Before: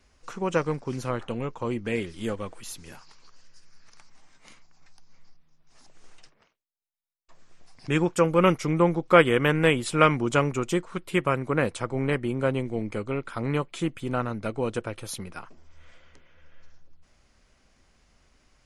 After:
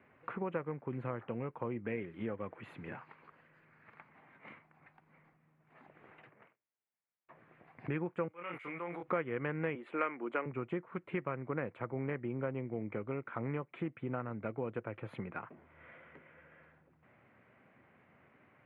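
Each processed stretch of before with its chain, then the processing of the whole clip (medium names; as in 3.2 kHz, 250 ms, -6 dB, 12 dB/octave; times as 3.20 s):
8.28–9.03 s: differentiator + doubling 23 ms -5.5 dB + decay stretcher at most 33 dB/s
9.75–10.46 s: high-pass 260 Hz 24 dB/octave + dynamic bell 1.8 kHz, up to +5 dB, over -33 dBFS, Q 0.79
whole clip: elliptic band-pass 110–2200 Hz, stop band 40 dB; compression 3:1, threshold -42 dBFS; trim +3 dB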